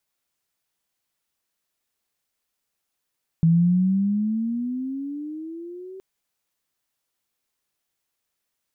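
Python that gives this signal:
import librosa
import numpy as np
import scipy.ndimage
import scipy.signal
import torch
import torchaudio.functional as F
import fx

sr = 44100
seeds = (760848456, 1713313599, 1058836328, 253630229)

y = fx.riser_tone(sr, length_s=2.57, level_db=-13, wave='sine', hz=162.0, rise_st=15.0, swell_db=-23.0)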